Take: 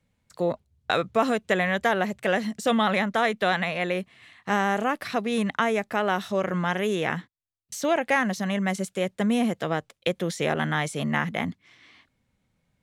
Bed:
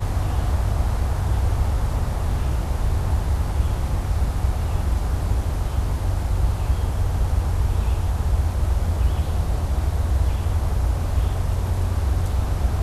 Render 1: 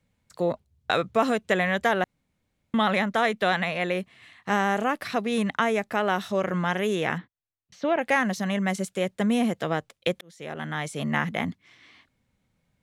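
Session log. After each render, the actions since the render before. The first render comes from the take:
0:02.04–0:02.74: fill with room tone
0:07.18–0:07.99: high-frequency loss of the air 270 metres
0:10.21–0:11.18: fade in linear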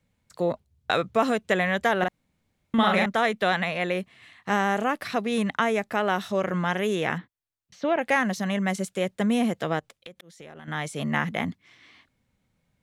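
0:01.98–0:03.06: double-tracking delay 44 ms −2.5 dB
0:09.79–0:10.68: downward compressor 16 to 1, threshold −39 dBFS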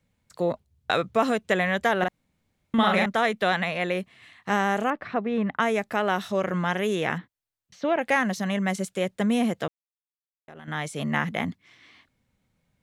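0:04.90–0:05.60: low-pass filter 1,800 Hz
0:09.68–0:10.48: silence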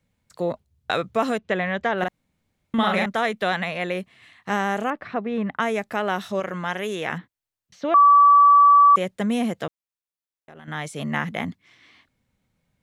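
0:01.38–0:01.98: high-frequency loss of the air 150 metres
0:06.40–0:07.13: low-shelf EQ 330 Hz −6.5 dB
0:07.94–0:08.96: beep over 1,150 Hz −9.5 dBFS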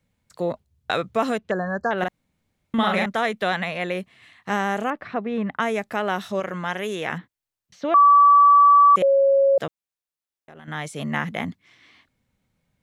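0:01.51–0:01.91: linear-phase brick-wall band-stop 1,800–4,100 Hz
0:09.02–0:09.58: beep over 549 Hz −13.5 dBFS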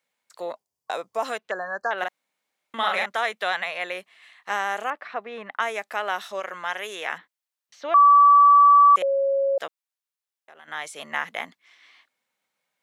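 0:00.56–0:01.25: gain on a spectral selection 1,100–4,500 Hz −9 dB
high-pass filter 690 Hz 12 dB per octave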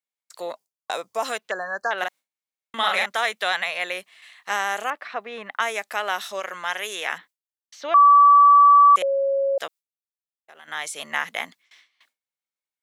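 noise gate with hold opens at −44 dBFS
high-shelf EQ 3,000 Hz +9 dB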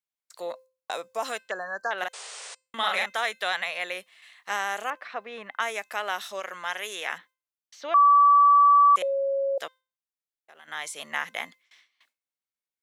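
0:02.13–0:02.55: sound drawn into the spectrogram noise 390–9,500 Hz −37 dBFS
tuned comb filter 520 Hz, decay 0.34 s, mix 40%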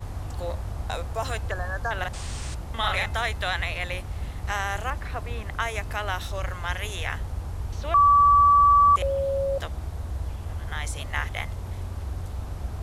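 mix in bed −11 dB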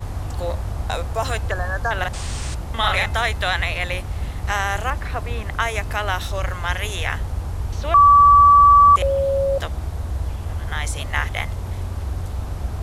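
level +6 dB

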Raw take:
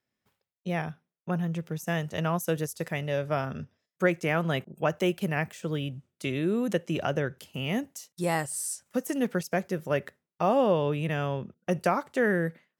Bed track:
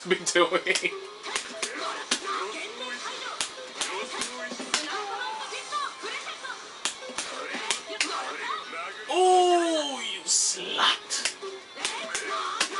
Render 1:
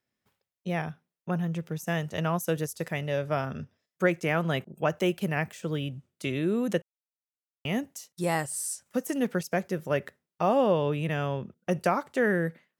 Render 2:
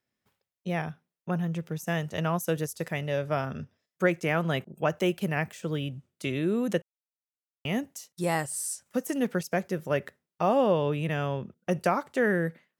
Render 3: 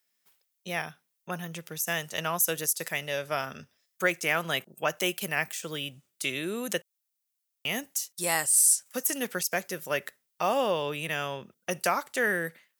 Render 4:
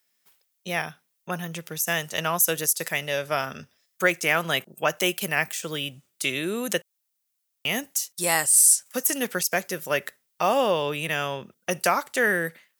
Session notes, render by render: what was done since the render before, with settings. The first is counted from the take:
0:06.82–0:07.65: silence
no processing that can be heard
spectral tilt +4 dB per octave
level +4.5 dB

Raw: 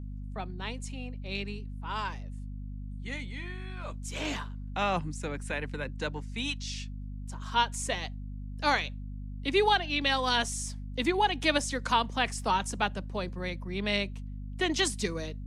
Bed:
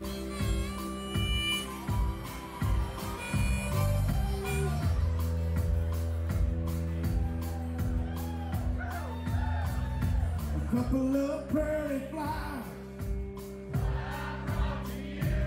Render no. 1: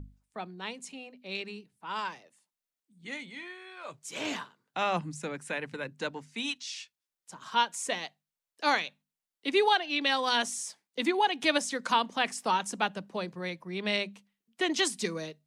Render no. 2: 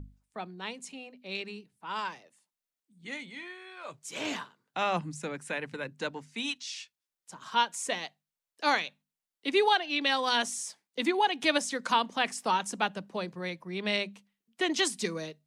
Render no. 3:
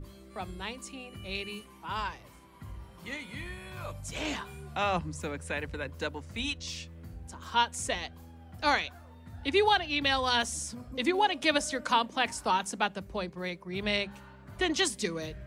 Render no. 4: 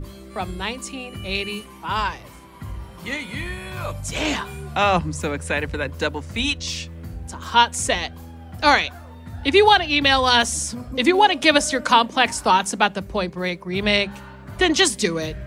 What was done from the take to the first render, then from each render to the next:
mains-hum notches 50/100/150/200/250 Hz
no processing that can be heard
mix in bed −15 dB
level +11 dB; brickwall limiter −3 dBFS, peak gain reduction 1 dB

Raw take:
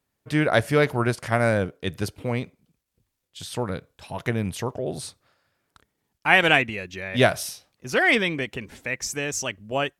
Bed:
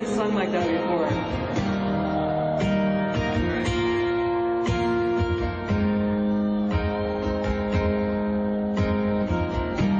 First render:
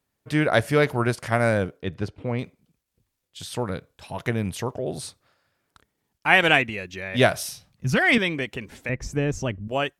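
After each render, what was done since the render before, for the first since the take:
0:01.82–0:02.39: head-to-tape spacing loss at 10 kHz 20 dB
0:07.52–0:08.18: low shelf with overshoot 240 Hz +12 dB, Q 1.5
0:08.89–0:09.68: spectral tilt −4 dB per octave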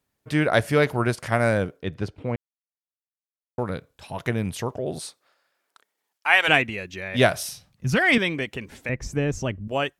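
0:02.36–0:03.58: silence
0:04.98–0:06.47: high-pass filter 330 Hz → 760 Hz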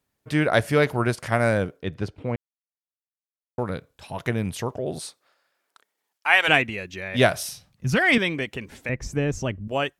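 no processing that can be heard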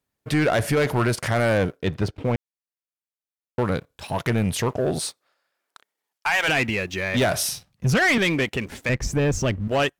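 brickwall limiter −14 dBFS, peak gain reduction 10.5 dB
leveller curve on the samples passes 2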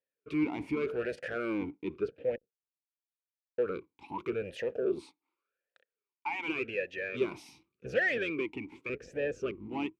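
sub-octave generator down 1 octave, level −3 dB
formant filter swept between two vowels e-u 0.87 Hz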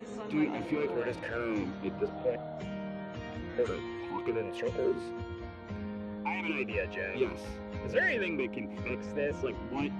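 mix in bed −16.5 dB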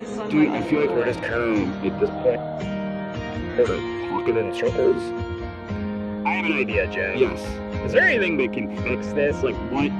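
level +11.5 dB

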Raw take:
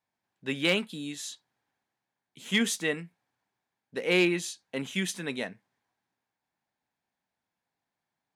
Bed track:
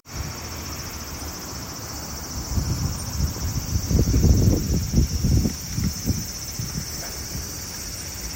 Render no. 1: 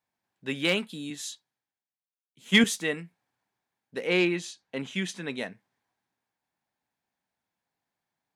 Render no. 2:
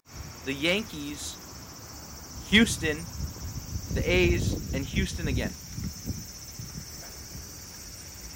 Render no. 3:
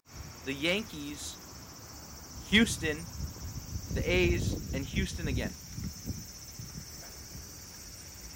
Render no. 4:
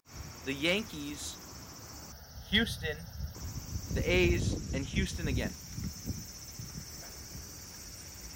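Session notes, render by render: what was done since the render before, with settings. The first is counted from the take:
0:01.10–0:02.64: multiband upward and downward expander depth 70%; 0:04.07–0:05.38: high-frequency loss of the air 56 metres
mix in bed track −10.5 dB
level −4 dB
0:02.12–0:03.35: phaser with its sweep stopped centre 1,600 Hz, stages 8; 0:04.40–0:05.06: low-pass filter 12,000 Hz 24 dB per octave

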